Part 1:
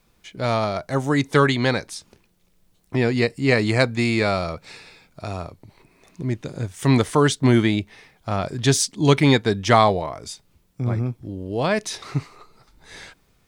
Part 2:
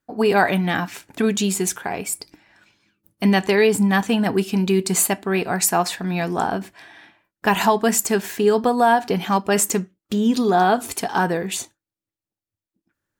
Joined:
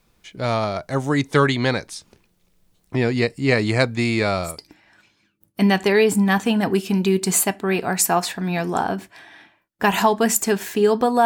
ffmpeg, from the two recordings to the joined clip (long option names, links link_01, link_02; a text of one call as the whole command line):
ffmpeg -i cue0.wav -i cue1.wav -filter_complex "[0:a]apad=whole_dur=11.25,atrim=end=11.25,atrim=end=4.63,asetpts=PTS-STARTPTS[link_01];[1:a]atrim=start=2.04:end=8.88,asetpts=PTS-STARTPTS[link_02];[link_01][link_02]acrossfade=duration=0.22:curve1=tri:curve2=tri" out.wav